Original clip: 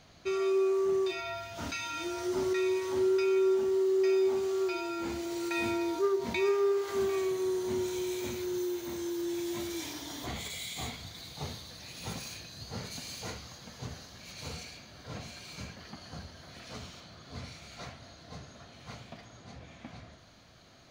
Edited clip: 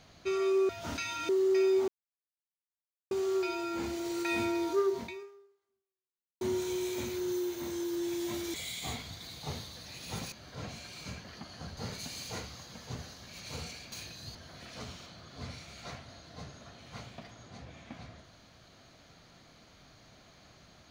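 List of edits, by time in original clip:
0.69–1.43 s: delete
2.03–3.78 s: delete
4.37 s: insert silence 1.23 s
6.20–7.67 s: fade out exponential
9.80–10.48 s: delete
12.26–12.69 s: swap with 14.84–16.29 s

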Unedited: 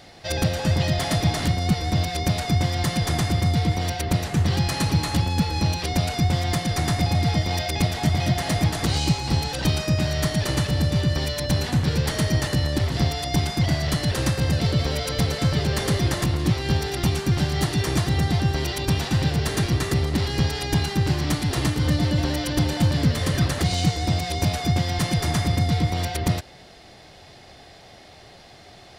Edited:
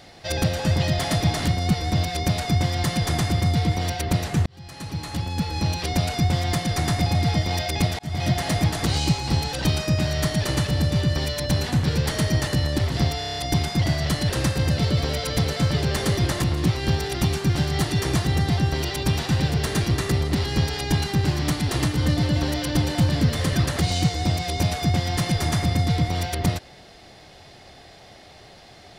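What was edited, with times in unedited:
4.46–5.88 s: fade in
7.99–8.27 s: fade in
13.19 s: stutter 0.03 s, 7 plays

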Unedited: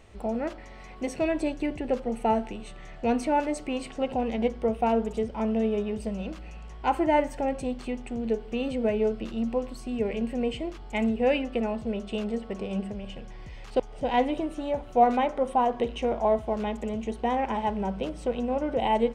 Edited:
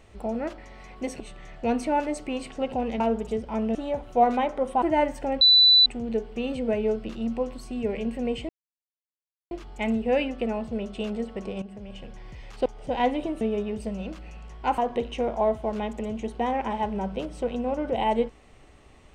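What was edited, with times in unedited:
1.20–2.60 s: delete
4.40–4.86 s: delete
5.61–6.98 s: swap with 14.55–15.62 s
7.57–8.02 s: bleep 3.98 kHz -12.5 dBFS
10.65 s: insert silence 1.02 s
12.76–13.35 s: fade in equal-power, from -14 dB

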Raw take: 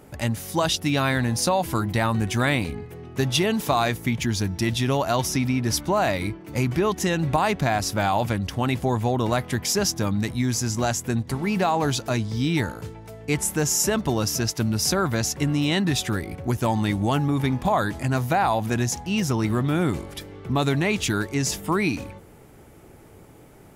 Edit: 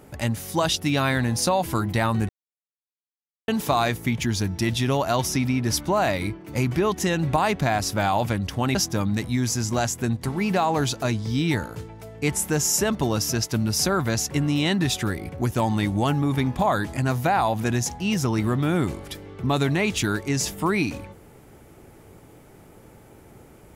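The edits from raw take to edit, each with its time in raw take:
2.29–3.48 s: mute
8.75–9.81 s: delete

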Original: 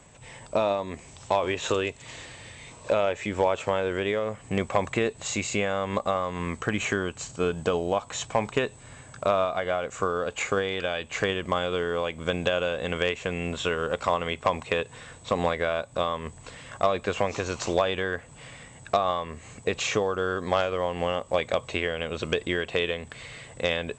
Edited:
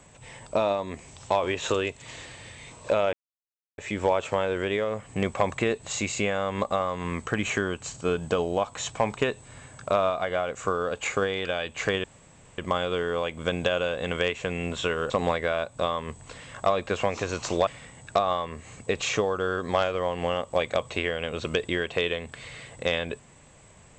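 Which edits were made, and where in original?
3.13 s: insert silence 0.65 s
11.39 s: insert room tone 0.54 s
13.91–15.27 s: delete
17.84–18.45 s: delete

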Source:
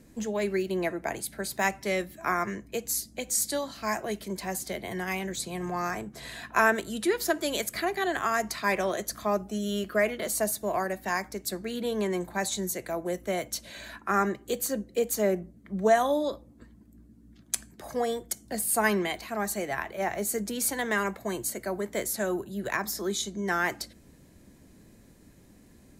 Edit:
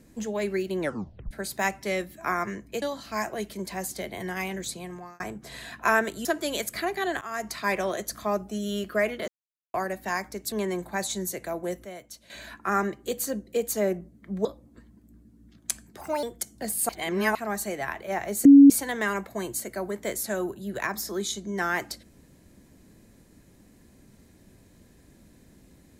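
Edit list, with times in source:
0.80 s: tape stop 0.51 s
2.82–3.53 s: delete
5.37–5.91 s: fade out
6.96–7.25 s: delete
8.21–8.70 s: fade in equal-power, from -16 dB
10.28–10.74 s: mute
11.52–11.94 s: delete
13.27–13.72 s: gain -11 dB
15.87–16.29 s: delete
17.85–18.13 s: speed 127%
18.79–19.25 s: reverse
20.35–20.60 s: bleep 280 Hz -7.5 dBFS

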